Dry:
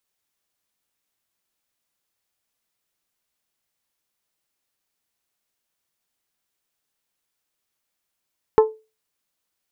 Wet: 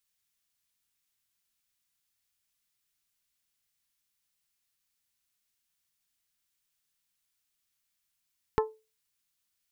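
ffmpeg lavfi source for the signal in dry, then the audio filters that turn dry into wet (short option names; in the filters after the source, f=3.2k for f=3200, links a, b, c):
-f lavfi -i "aevalsrc='0.473*pow(10,-3*t/0.28)*sin(2*PI*437*t)+0.211*pow(10,-3*t/0.172)*sin(2*PI*874*t)+0.0944*pow(10,-3*t/0.152)*sin(2*PI*1048.8*t)+0.0422*pow(10,-3*t/0.13)*sin(2*PI*1311*t)+0.0188*pow(10,-3*t/0.106)*sin(2*PI*1748*t)':d=0.89:s=44100"
-af "equalizer=f=520:t=o:w=2.3:g=-14"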